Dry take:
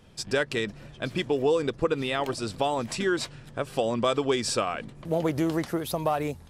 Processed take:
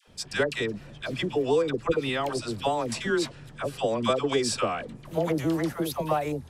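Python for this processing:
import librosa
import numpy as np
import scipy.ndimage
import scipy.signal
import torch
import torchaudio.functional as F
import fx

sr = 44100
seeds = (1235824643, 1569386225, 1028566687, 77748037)

y = fx.dispersion(x, sr, late='lows', ms=77.0, hz=750.0)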